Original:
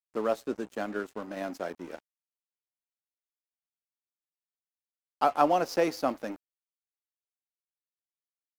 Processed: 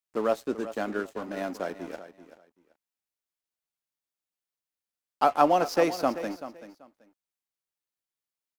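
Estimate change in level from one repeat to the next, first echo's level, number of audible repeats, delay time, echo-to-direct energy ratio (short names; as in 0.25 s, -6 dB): -14.0 dB, -13.5 dB, 2, 0.385 s, -13.5 dB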